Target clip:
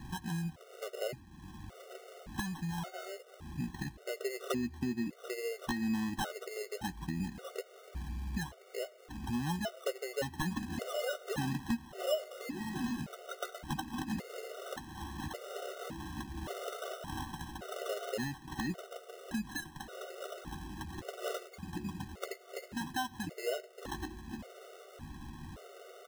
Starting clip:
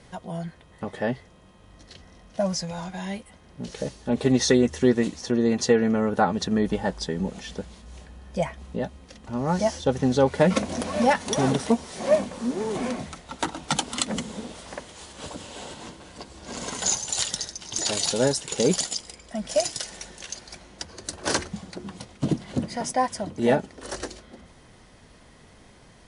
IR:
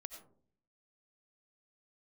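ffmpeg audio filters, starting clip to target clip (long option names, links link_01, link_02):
-filter_complex "[0:a]lowpass=7800,highshelf=frequency=3200:gain=-11.5,acompressor=threshold=-44dB:ratio=3,acrusher=samples=19:mix=1:aa=0.000001,aeval=exprs='(mod(26.6*val(0)+1,2)-1)/26.6':channel_layout=same,asplit=2[link_01][link_02];[link_02]adelay=13,volume=-12dB[link_03];[link_01][link_03]amix=inputs=2:normalize=0,asplit=2[link_04][link_05];[1:a]atrim=start_sample=2205[link_06];[link_05][link_06]afir=irnorm=-1:irlink=0,volume=-11.5dB[link_07];[link_04][link_07]amix=inputs=2:normalize=0,afftfilt=real='re*gt(sin(2*PI*0.88*pts/sr)*(1-2*mod(floor(b*sr/1024/380),2)),0)':imag='im*gt(sin(2*PI*0.88*pts/sr)*(1-2*mod(floor(b*sr/1024/380),2)),0)':win_size=1024:overlap=0.75,volume=6dB"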